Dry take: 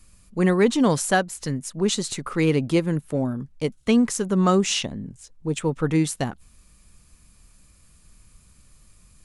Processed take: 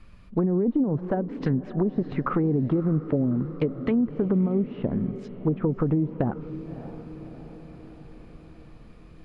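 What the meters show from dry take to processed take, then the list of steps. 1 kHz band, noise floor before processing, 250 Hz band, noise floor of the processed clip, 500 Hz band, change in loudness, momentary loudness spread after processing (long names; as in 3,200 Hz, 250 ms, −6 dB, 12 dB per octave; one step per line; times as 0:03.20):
−7.5 dB, −56 dBFS, −1.5 dB, −48 dBFS, −4.0 dB, −3.0 dB, 17 LU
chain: low-shelf EQ 170 Hz −4.5 dB
brickwall limiter −18.5 dBFS, peak gain reduction 11 dB
treble cut that deepens with the level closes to 390 Hz, closed at −23 dBFS
feedback delay with all-pass diffusion 603 ms, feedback 59%, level −15.5 dB
downward compressor, threshold −27 dBFS, peak gain reduction 5 dB
high-frequency loss of the air 360 metres
highs frequency-modulated by the lows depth 0.12 ms
level +8.5 dB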